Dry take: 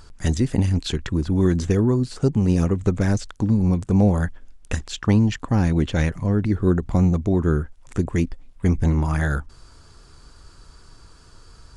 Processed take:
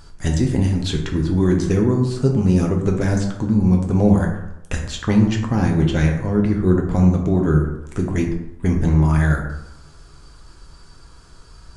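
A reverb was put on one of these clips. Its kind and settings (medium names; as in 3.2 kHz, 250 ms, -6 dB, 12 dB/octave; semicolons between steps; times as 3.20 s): plate-style reverb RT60 0.87 s, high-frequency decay 0.5×, DRR 1 dB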